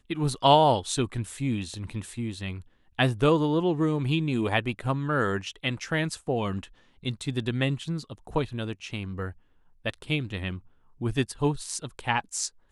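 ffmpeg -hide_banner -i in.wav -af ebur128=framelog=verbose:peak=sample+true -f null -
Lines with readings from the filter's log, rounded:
Integrated loudness:
  I:         -27.9 LUFS
  Threshold: -38.1 LUFS
Loudness range:
  LRA:         6.3 LU
  Threshold: -48.8 LUFS
  LRA low:   -32.4 LUFS
  LRA high:  -26.1 LUFS
Sample peak:
  Peak:       -5.3 dBFS
True peak:
  Peak:       -5.2 dBFS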